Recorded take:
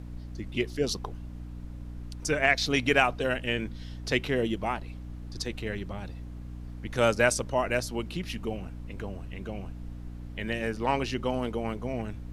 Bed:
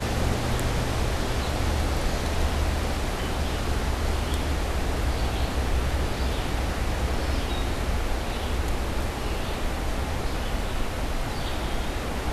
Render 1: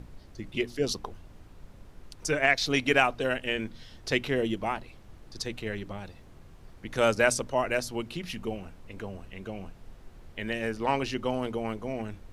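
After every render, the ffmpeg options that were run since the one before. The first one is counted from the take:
-af "bandreject=f=60:t=h:w=6,bandreject=f=120:t=h:w=6,bandreject=f=180:t=h:w=6,bandreject=f=240:t=h:w=6,bandreject=f=300:t=h:w=6"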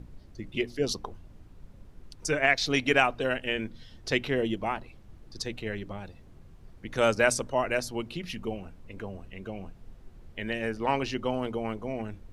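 -af "afftdn=nr=6:nf=-51"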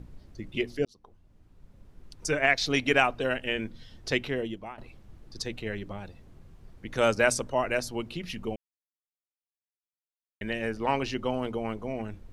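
-filter_complex "[0:a]asplit=5[a][b][c][d][e];[a]atrim=end=0.85,asetpts=PTS-STARTPTS,afade=t=out:st=0.846:d=0.004:c=hsin[f];[b]atrim=start=0.85:end=4.78,asetpts=PTS-STARTPTS,afade=t=in:d=1.42,afade=t=out:st=3.26:d=0.67:silence=0.177828[g];[c]atrim=start=4.78:end=8.56,asetpts=PTS-STARTPTS,afade=t=in:d=0.004:c=hsin:silence=0.177828,afade=t=out:st=3.776:d=0.004:c=hsin[h];[d]atrim=start=8.56:end=10.41,asetpts=PTS-STARTPTS,volume=0[i];[e]atrim=start=10.41,asetpts=PTS-STARTPTS,afade=t=in:d=0.004:c=hsin[j];[f][g][h][i][j]concat=n=5:v=0:a=1"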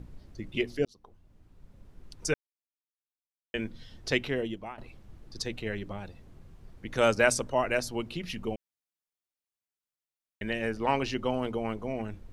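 -filter_complex "[0:a]asplit=3[a][b][c];[a]atrim=end=2.34,asetpts=PTS-STARTPTS,afade=t=out:st=2.336:d=0.004:c=hsin[d];[b]atrim=start=2.34:end=3.54,asetpts=PTS-STARTPTS,volume=0[e];[c]atrim=start=3.54,asetpts=PTS-STARTPTS,afade=t=in:d=0.004:c=hsin[f];[d][e][f]concat=n=3:v=0:a=1"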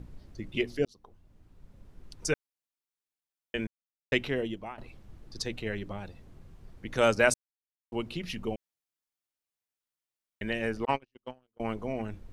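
-filter_complex "[0:a]asettb=1/sr,asplit=3[a][b][c];[a]atrim=end=10.854[d];[b]atrim=start=10.85:end=11.6,asetpts=PTS-STARTPTS,afade=t=in:d=0.004:c=qsin,afade=t=out:st=0.746:d=0.004:c=qsin,agate=range=-52dB:threshold=-26dB:ratio=16:release=100:detection=peak[e];[c]atrim=start=11.596[f];[d][e]acrossfade=d=0.004:c1=hsin:c2=qsin[g];[g][f]acrossfade=d=0.004:c1=qsin:c2=hsin,asplit=5[h][i][j][k][l];[h]atrim=end=3.67,asetpts=PTS-STARTPTS,afade=t=out:st=3.666:d=0.004:c=hsin[m];[i]atrim=start=3.67:end=4.12,asetpts=PTS-STARTPTS,volume=0[n];[j]atrim=start=4.12:end=7.34,asetpts=PTS-STARTPTS,afade=t=in:d=0.004:c=hsin,afade=t=out:st=3.216:d=0.004:c=hsin[o];[k]atrim=start=7.34:end=7.92,asetpts=PTS-STARTPTS,volume=0[p];[l]atrim=start=7.92,asetpts=PTS-STARTPTS,afade=t=in:d=0.004:c=hsin[q];[m][n][o][p][q]concat=n=5:v=0:a=1"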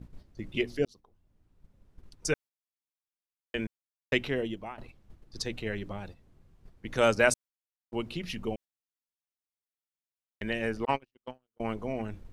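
-af "agate=range=-9dB:threshold=-45dB:ratio=16:detection=peak"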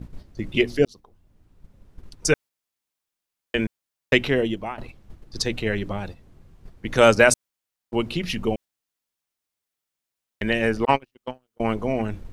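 -af "volume=9.5dB,alimiter=limit=-2dB:level=0:latency=1"

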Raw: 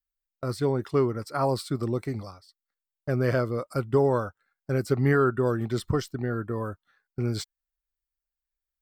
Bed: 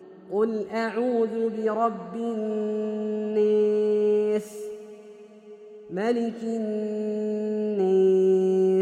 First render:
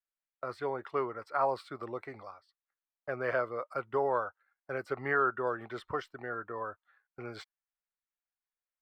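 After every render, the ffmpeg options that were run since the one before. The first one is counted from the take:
-filter_complex "[0:a]acrossover=split=520 2800:gain=0.0794 1 0.0708[a][b][c];[a][b][c]amix=inputs=3:normalize=0"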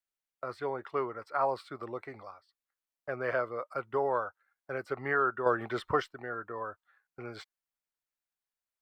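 -filter_complex "[0:a]asplit=3[a][b][c];[a]atrim=end=5.462[d];[b]atrim=start=5.458:end=6.072,asetpts=PTS-STARTPTS,volume=6.5dB[e];[c]atrim=start=6.068[f];[d][e]acrossfade=d=0.004:c1=hsin:c2=hsin[g];[g][f]acrossfade=d=0.004:c1=hsin:c2=hsin"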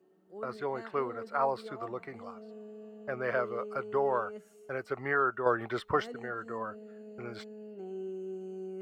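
-filter_complex "[1:a]volume=-20dB[a];[0:a][a]amix=inputs=2:normalize=0"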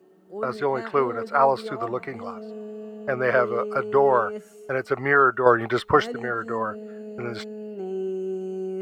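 -af "volume=10.5dB"

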